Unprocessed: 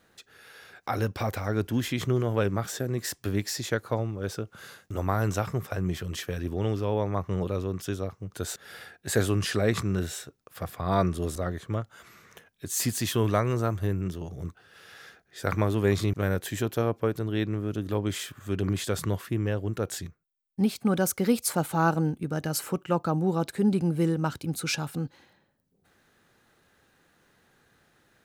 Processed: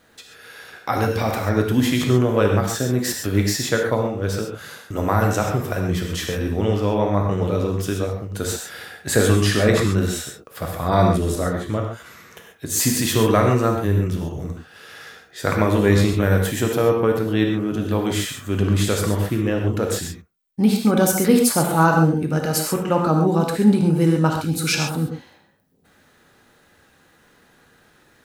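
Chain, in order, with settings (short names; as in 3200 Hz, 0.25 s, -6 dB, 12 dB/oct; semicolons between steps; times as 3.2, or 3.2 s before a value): non-linear reverb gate 0.16 s flat, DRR 1 dB; gain +6.5 dB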